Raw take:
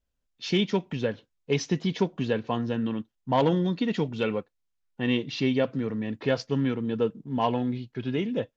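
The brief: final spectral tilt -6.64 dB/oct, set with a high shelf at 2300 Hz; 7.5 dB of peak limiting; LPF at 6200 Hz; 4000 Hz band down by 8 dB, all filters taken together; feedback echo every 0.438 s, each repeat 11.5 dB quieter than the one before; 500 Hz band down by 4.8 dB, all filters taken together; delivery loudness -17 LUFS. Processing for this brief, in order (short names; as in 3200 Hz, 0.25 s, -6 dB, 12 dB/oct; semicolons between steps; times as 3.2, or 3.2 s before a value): LPF 6200 Hz; bell 500 Hz -5.5 dB; high shelf 2300 Hz -6 dB; bell 4000 Hz -5 dB; limiter -21.5 dBFS; feedback echo 0.438 s, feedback 27%, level -11.5 dB; gain +15.5 dB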